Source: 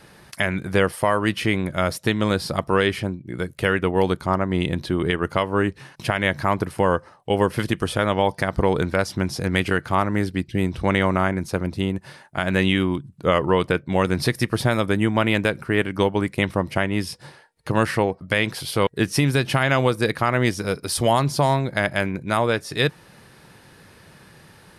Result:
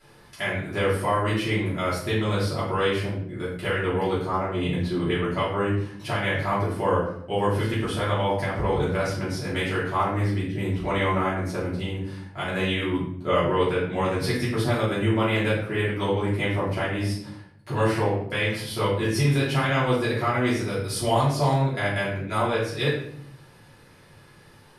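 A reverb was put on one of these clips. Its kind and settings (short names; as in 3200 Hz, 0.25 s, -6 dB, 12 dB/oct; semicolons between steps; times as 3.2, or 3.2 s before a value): shoebox room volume 120 m³, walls mixed, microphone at 3 m; gain -14.5 dB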